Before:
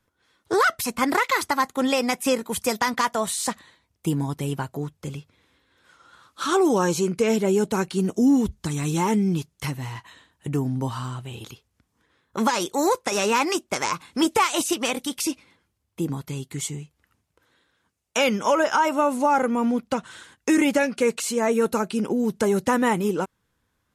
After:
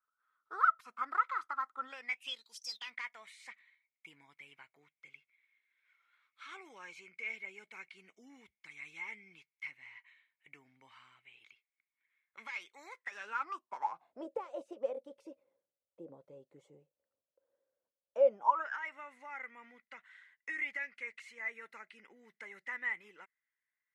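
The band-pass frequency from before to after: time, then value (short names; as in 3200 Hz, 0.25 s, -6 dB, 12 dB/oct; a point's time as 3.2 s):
band-pass, Q 15
1.84 s 1300 Hz
2.63 s 6100 Hz
2.92 s 2200 Hz
12.91 s 2200 Hz
14.29 s 550 Hz
18.26 s 550 Hz
18.8 s 2000 Hz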